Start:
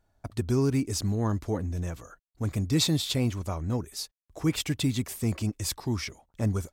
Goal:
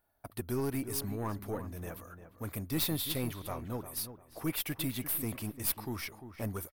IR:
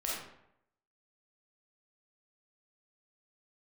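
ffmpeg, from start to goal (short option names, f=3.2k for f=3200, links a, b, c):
-filter_complex "[0:a]asplit=2[a][b];[b]highpass=f=720:p=1,volume=13dB,asoftclip=type=tanh:threshold=-13dB[c];[a][c]amix=inputs=2:normalize=0,lowpass=f=2.3k:p=1,volume=-6dB,aexciter=amount=12.1:drive=7.4:freq=10k,aeval=exprs='(tanh(3.98*val(0)+0.7)-tanh(0.7))/3.98':c=same,asplit=2[d][e];[e]adelay=348,lowpass=f=1.9k:p=1,volume=-10.5dB,asplit=2[f][g];[g]adelay=348,lowpass=f=1.9k:p=1,volume=0.28,asplit=2[h][i];[i]adelay=348,lowpass=f=1.9k:p=1,volume=0.28[j];[d][f][h][j]amix=inputs=4:normalize=0,volume=-4.5dB"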